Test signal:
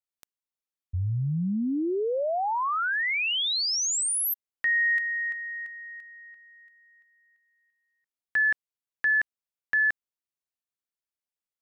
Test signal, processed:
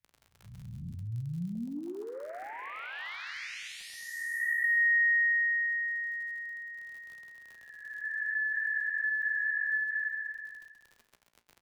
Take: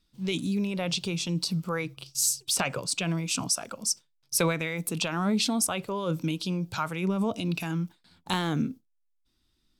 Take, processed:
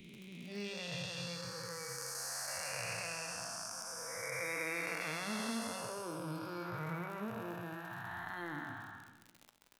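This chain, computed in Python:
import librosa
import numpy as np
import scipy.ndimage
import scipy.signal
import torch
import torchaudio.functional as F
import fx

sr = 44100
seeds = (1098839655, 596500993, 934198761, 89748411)

y = fx.spec_blur(x, sr, span_ms=741.0)
y = fx.notch(y, sr, hz=7700.0, q=11.0)
y = fx.noise_reduce_blind(y, sr, reduce_db=17)
y = fx.peak_eq(y, sr, hz=2000.0, db=10.5, octaves=0.85)
y = fx.dmg_crackle(y, sr, seeds[0], per_s=49.0, level_db=-45.0)
y = fx.comb_fb(y, sr, f0_hz=58.0, decay_s=0.28, harmonics='all', damping=0.3, mix_pct=60)
y = fx.echo_feedback(y, sr, ms=132, feedback_pct=30, wet_db=-10)
y = fx.band_squash(y, sr, depth_pct=40)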